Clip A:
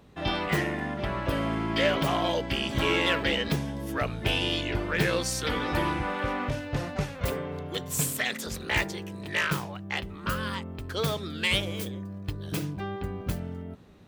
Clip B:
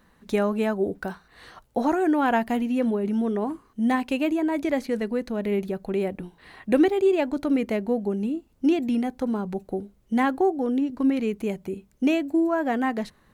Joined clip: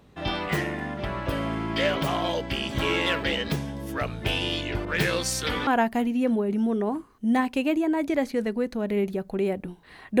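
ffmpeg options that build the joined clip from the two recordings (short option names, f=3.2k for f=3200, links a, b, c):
-filter_complex "[0:a]asettb=1/sr,asplit=3[a][b][c];[a]atrim=end=4.854[d];[b]atrim=start=4.85:end=5.67,asetpts=PTS-STARTPTS,afade=t=in:d=0.004:c=qsin,afade=t=out:st=0.816:d=0.004:c=qsin,adynamicequalizer=threshold=0.0126:dfrequency=1500:dqfactor=0.7:tfrequency=1500:tqfactor=0.7:attack=5:release=100:ratio=0.375:range=1.5:mode=boostabove:tftype=highshelf[e];[c]atrim=start=5.666[f];[d][e]acrossfade=d=0.004:c1=hsin:c2=qsin[g];[g][f]acrossfade=d=0.004:c1=qsin:c2=hsin,apad=whole_dur=10.2,atrim=end=10.2,atrim=end=5.672[h];[1:a]atrim=start=2.218:end=6.75[i];[h][i]acrossfade=d=0.004:c1=hsin:c2=hsin"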